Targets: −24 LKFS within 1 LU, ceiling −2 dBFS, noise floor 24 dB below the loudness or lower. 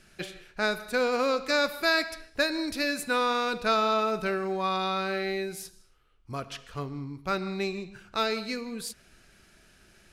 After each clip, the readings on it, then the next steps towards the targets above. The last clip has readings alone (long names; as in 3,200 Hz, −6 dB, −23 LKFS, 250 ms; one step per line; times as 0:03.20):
integrated loudness −28.5 LKFS; sample peak −14.0 dBFS; target loudness −24.0 LKFS
→ level +4.5 dB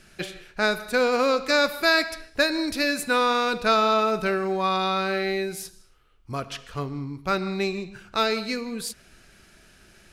integrated loudness −24.0 LKFS; sample peak −9.5 dBFS; background noise floor −55 dBFS